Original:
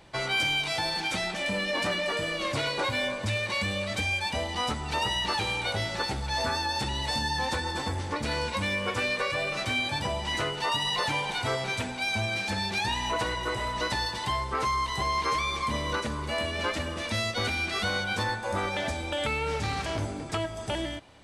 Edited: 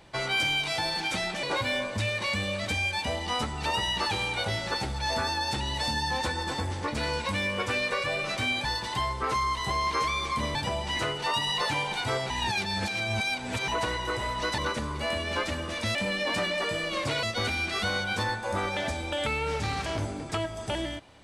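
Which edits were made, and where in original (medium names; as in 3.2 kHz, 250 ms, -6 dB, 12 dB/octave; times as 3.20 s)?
1.43–2.71 s: move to 17.23 s
11.68–13.06 s: reverse
13.96–15.86 s: move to 9.93 s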